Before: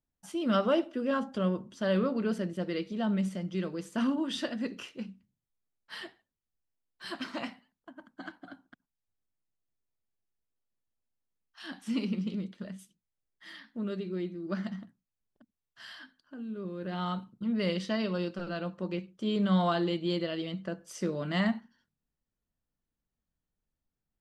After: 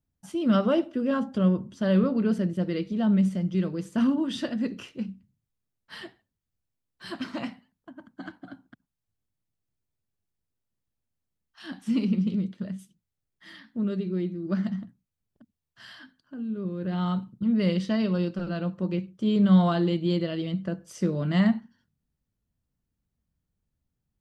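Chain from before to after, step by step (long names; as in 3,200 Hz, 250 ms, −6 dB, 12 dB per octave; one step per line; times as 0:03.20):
parametric band 97 Hz +12 dB 2.8 octaves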